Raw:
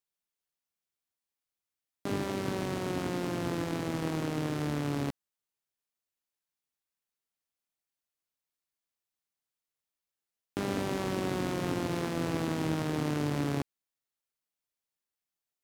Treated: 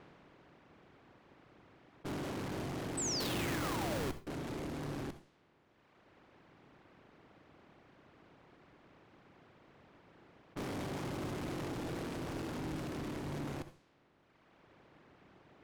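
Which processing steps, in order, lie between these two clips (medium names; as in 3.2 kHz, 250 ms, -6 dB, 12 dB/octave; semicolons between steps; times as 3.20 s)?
spectral levelling over time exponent 0.4; reverb removal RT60 1.8 s; level-controlled noise filter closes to 2.1 kHz, open at -31.5 dBFS; in parallel at +2 dB: peak limiter -23 dBFS, peak gain reduction 9 dB; on the sum: valve stage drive 32 dB, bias 0.65; 2.97–4.11 s: painted sound fall 360–8400 Hz -32 dBFS; 3.20–4.27 s: Schmitt trigger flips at -32.5 dBFS; on a send at -11.5 dB: reverberation RT60 0.30 s, pre-delay 59 ms; on the sum: trim -5.5 dB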